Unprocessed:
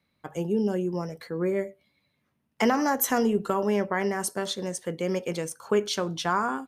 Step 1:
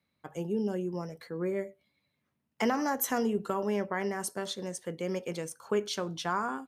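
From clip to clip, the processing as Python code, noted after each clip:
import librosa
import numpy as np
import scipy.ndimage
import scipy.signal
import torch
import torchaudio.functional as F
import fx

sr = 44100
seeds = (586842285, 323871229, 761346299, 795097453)

y = scipy.signal.sosfilt(scipy.signal.butter(2, 42.0, 'highpass', fs=sr, output='sos'), x)
y = y * 10.0 ** (-5.5 / 20.0)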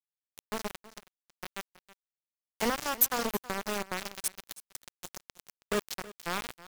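y = fx.high_shelf(x, sr, hz=7000.0, db=10.5)
y = np.where(np.abs(y) >= 10.0 ** (-24.0 / 20.0), y, 0.0)
y = y + 10.0 ** (-18.0 / 20.0) * np.pad(y, (int(322 * sr / 1000.0), 0))[:len(y)]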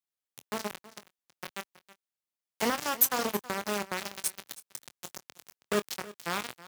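y = scipy.signal.sosfilt(scipy.signal.butter(2, 95.0, 'highpass', fs=sr, output='sos'), x)
y = fx.doubler(y, sr, ms=24.0, db=-12.5)
y = y * 10.0 ** (1.0 / 20.0)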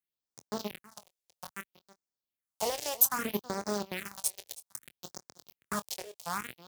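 y = fx.phaser_stages(x, sr, stages=4, low_hz=210.0, high_hz=2900.0, hz=0.62, feedback_pct=25)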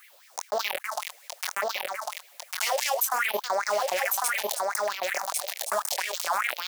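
y = fx.filter_lfo_highpass(x, sr, shape='sine', hz=5.0, low_hz=550.0, high_hz=2300.0, q=7.3)
y = y + 10.0 ** (-6.5 / 20.0) * np.pad(y, (int(1100 * sr / 1000.0), 0))[:len(y)]
y = fx.env_flatten(y, sr, amount_pct=70)
y = y * 10.0 ** (-4.5 / 20.0)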